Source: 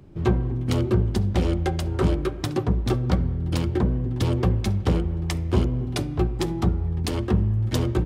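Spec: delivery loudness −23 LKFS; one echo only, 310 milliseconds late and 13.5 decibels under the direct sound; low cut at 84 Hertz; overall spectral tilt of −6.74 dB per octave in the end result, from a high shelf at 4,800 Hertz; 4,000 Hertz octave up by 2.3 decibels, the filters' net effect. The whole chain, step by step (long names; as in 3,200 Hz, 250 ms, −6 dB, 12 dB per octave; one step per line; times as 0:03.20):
high-pass filter 84 Hz
parametric band 4,000 Hz +6.5 dB
high-shelf EQ 4,800 Hz −7.5 dB
single-tap delay 310 ms −13.5 dB
level +2.5 dB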